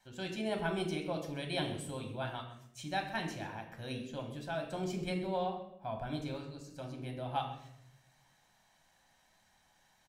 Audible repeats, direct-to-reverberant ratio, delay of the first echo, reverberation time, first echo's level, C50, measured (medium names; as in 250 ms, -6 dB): 1, 3.0 dB, 130 ms, 0.75 s, -15.5 dB, 8.0 dB